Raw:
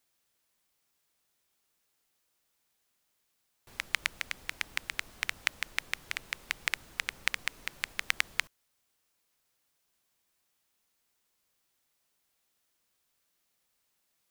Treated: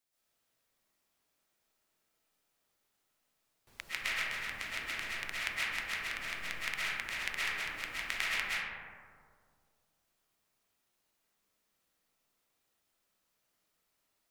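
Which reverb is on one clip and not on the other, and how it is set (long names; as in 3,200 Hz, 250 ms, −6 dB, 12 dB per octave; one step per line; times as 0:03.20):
comb and all-pass reverb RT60 2.1 s, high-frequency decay 0.3×, pre-delay 90 ms, DRR −9.5 dB
level −9.5 dB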